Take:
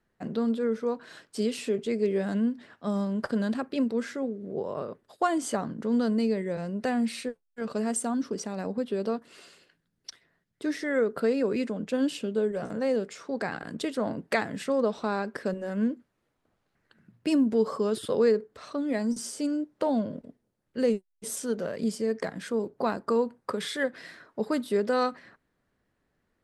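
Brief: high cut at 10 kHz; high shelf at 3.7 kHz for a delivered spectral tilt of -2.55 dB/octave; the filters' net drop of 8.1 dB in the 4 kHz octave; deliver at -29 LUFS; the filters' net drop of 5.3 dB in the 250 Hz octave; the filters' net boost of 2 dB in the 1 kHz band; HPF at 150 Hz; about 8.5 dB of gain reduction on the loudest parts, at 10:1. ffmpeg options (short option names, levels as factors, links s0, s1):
-af "highpass=150,lowpass=10000,equalizer=f=250:t=o:g=-5.5,equalizer=f=1000:t=o:g=4,highshelf=f=3700:g=-8.5,equalizer=f=4000:t=o:g=-5,acompressor=threshold=0.0398:ratio=10,volume=2"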